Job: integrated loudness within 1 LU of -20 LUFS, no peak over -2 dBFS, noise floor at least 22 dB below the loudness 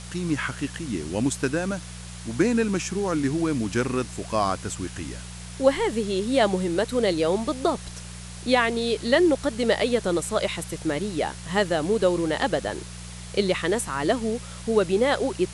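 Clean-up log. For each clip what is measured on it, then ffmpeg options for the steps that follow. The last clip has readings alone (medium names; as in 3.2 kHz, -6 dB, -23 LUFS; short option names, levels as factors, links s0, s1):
hum 60 Hz; highest harmonic 180 Hz; hum level -37 dBFS; noise floor -39 dBFS; noise floor target -47 dBFS; loudness -25.0 LUFS; peak level -6.0 dBFS; loudness target -20.0 LUFS
-> -af "bandreject=f=60:t=h:w=4,bandreject=f=120:t=h:w=4,bandreject=f=180:t=h:w=4"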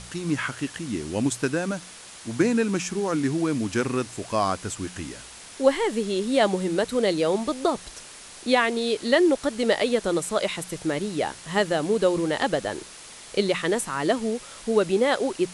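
hum not found; noise floor -44 dBFS; noise floor target -47 dBFS
-> -af "afftdn=nr=6:nf=-44"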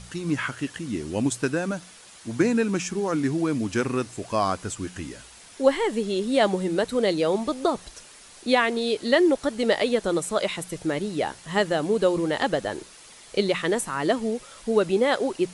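noise floor -48 dBFS; loudness -25.0 LUFS; peak level -6.0 dBFS; loudness target -20.0 LUFS
-> -af "volume=1.78,alimiter=limit=0.794:level=0:latency=1"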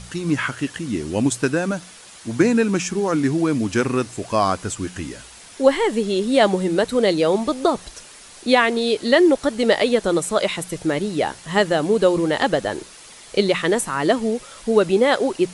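loudness -20.0 LUFS; peak level -2.0 dBFS; noise floor -43 dBFS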